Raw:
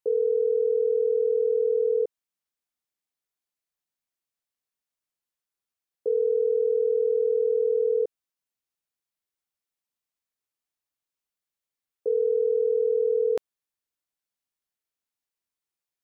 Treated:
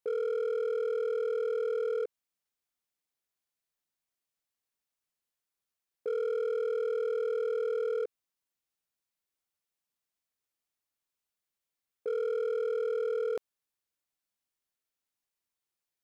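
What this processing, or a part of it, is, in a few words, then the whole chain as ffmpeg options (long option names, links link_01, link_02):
clipper into limiter: -af "asoftclip=type=hard:threshold=-21dB,alimiter=level_in=3.5dB:limit=-24dB:level=0:latency=1:release=33,volume=-3.5dB"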